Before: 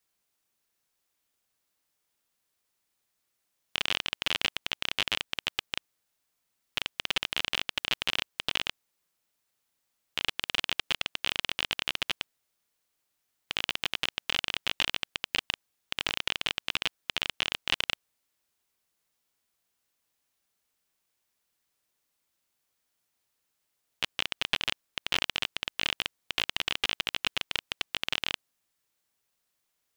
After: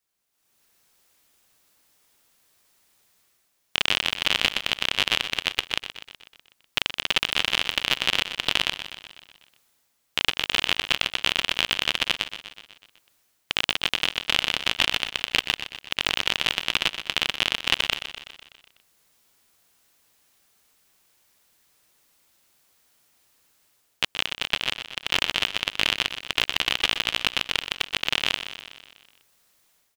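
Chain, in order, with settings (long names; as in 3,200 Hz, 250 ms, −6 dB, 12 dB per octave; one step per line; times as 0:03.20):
automatic gain control gain up to 16.5 dB
on a send: repeating echo 124 ms, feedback 60%, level −11 dB
on the sum: level −2 dB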